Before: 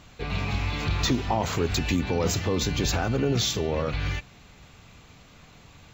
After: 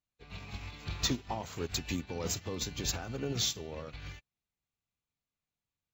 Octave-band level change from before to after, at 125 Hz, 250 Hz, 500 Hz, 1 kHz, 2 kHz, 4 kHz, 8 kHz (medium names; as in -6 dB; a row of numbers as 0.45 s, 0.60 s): -13.0 dB, -12.0 dB, -12.5 dB, -12.5 dB, -12.0 dB, -6.5 dB, -4.0 dB